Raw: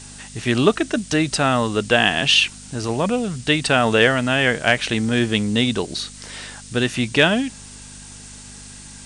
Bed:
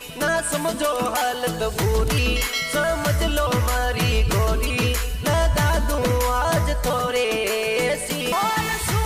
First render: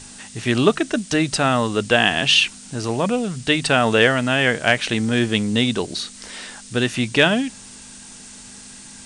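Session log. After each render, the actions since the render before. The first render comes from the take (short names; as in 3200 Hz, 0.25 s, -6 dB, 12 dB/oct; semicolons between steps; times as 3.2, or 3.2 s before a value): de-hum 50 Hz, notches 3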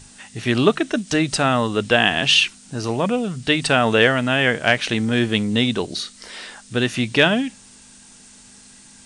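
noise print and reduce 6 dB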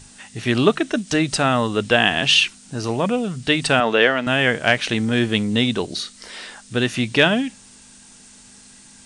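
3.8–4.27 BPF 260–4600 Hz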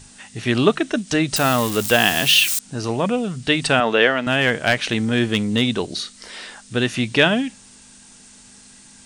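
1.36–2.59 switching spikes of -15.5 dBFS; 4.29–5.62 overloaded stage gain 8.5 dB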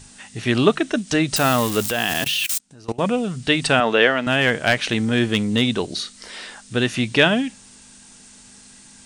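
1.9–3.01 level quantiser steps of 22 dB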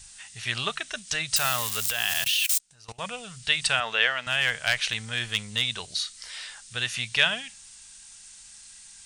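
passive tone stack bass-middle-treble 10-0-10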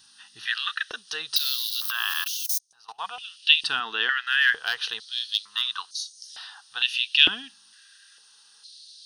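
fixed phaser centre 2200 Hz, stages 6; stepped high-pass 2.2 Hz 310–6400 Hz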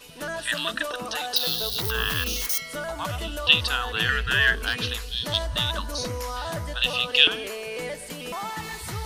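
add bed -11 dB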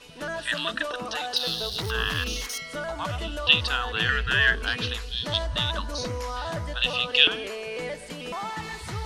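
air absorption 57 m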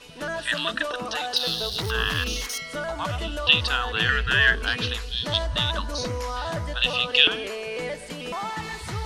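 gain +2 dB; limiter -3 dBFS, peak gain reduction 2.5 dB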